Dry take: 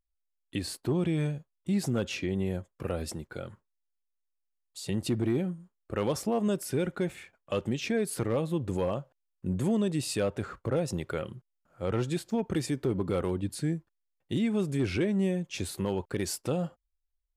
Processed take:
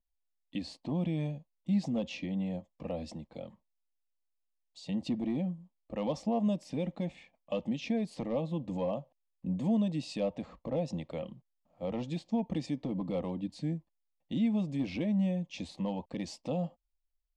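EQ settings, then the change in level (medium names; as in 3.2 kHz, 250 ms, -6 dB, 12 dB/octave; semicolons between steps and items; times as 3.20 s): low-pass 9.9 kHz; distance through air 150 m; static phaser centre 390 Hz, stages 6; 0.0 dB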